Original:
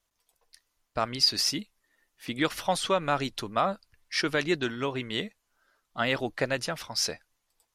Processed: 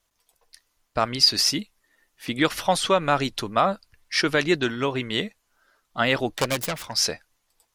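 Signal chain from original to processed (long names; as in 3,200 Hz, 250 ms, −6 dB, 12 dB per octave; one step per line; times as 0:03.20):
0:06.28–0:06.94: phase distortion by the signal itself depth 0.54 ms
level +5.5 dB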